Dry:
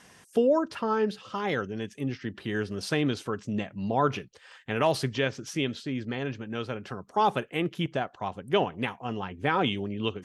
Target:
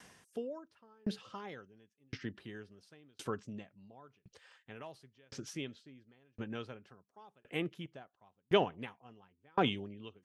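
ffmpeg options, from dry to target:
-af "aeval=exprs='val(0)*pow(10,-40*if(lt(mod(0.94*n/s,1),2*abs(0.94)/1000),1-mod(0.94*n/s,1)/(2*abs(0.94)/1000),(mod(0.94*n/s,1)-2*abs(0.94)/1000)/(1-2*abs(0.94)/1000))/20)':c=same,volume=-1.5dB"

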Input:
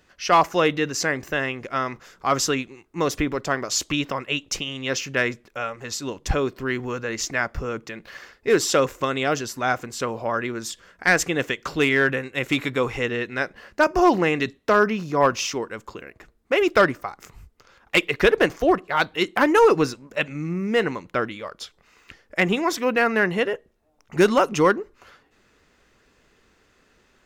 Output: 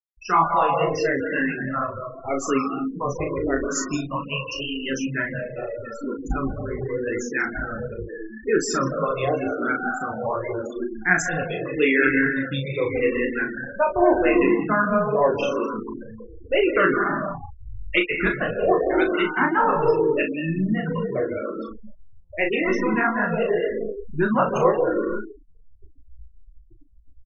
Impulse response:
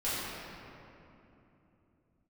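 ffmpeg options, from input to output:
-filter_complex "[0:a]aeval=exprs='val(0)+0.5*0.0316*sgn(val(0))':c=same,asplit=2[a][b];[b]lowpass=f=8.5k:w=0.5412,lowpass=f=8.5k:w=1.3066[c];[1:a]atrim=start_sample=2205,afade=t=out:st=0.41:d=0.01,atrim=end_sample=18522,adelay=141[d];[c][d]afir=irnorm=-1:irlink=0,volume=-9.5dB[e];[a][e]amix=inputs=2:normalize=0,flanger=delay=18:depth=4.8:speed=2.1,afftfilt=real='re*gte(hypot(re,im),0.1)':imag='im*gte(hypot(re,im),0.1)':win_size=1024:overlap=0.75,asplit=2[f][g];[g]adelay=37,volume=-6.5dB[h];[f][h]amix=inputs=2:normalize=0,asplit=2[i][j];[j]afreqshift=-0.84[k];[i][k]amix=inputs=2:normalize=1,volume=2dB"

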